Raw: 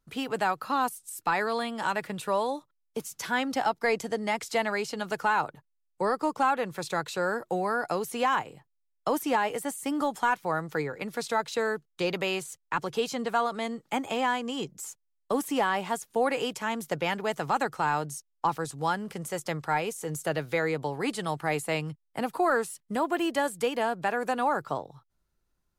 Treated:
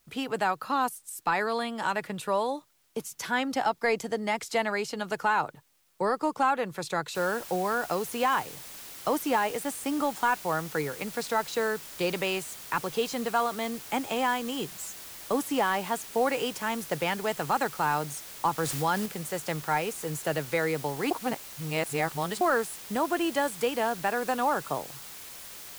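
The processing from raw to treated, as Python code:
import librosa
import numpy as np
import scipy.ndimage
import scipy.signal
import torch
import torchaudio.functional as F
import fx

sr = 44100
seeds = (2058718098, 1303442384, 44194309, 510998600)

y = fx.noise_floor_step(x, sr, seeds[0], at_s=7.15, before_db=-69, after_db=-44, tilt_db=0.0)
y = fx.env_flatten(y, sr, amount_pct=50, at=(18.58, 19.06))
y = fx.edit(y, sr, fx.reverse_span(start_s=21.11, length_s=1.3), tone=tone)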